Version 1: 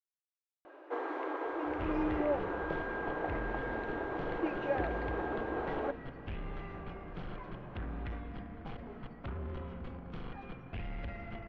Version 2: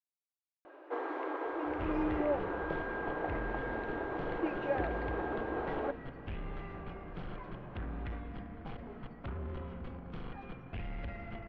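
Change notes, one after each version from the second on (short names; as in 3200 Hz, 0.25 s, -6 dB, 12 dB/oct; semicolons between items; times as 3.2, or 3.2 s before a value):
master: add air absorption 50 m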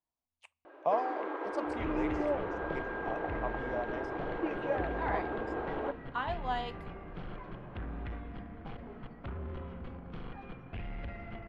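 speech: unmuted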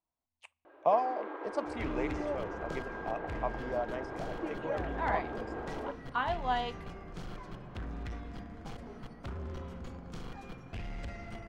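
speech +3.0 dB; first sound -4.0 dB; second sound: remove LPF 3100 Hz 24 dB/oct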